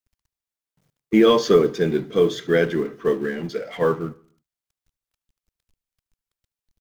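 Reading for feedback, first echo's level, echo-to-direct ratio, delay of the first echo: 53%, -22.0 dB, -20.5 dB, 74 ms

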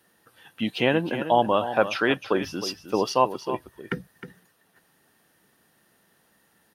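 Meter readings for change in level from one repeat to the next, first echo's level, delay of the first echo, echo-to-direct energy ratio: no regular repeats, -11.5 dB, 312 ms, -11.5 dB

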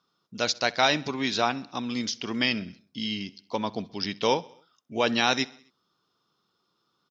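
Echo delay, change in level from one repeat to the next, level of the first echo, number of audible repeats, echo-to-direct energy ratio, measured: 65 ms, -4.5 dB, -23.0 dB, 3, -21.0 dB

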